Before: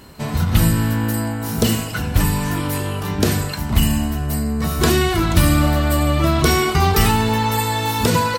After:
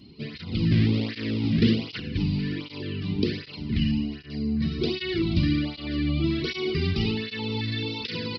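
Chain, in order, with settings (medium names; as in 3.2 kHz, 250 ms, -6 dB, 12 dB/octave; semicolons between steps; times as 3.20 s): 0.71–2.00 s: square wave that keeps the level; high-order bell 900 Hz -15 dB; in parallel at -2 dB: peak limiter -13 dBFS, peak gain reduction 10 dB; on the sum: LFO notch square 2.3 Hz 840–1700 Hz; resampled via 11.025 kHz; cancelling through-zero flanger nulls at 1.3 Hz, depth 2.4 ms; trim -7 dB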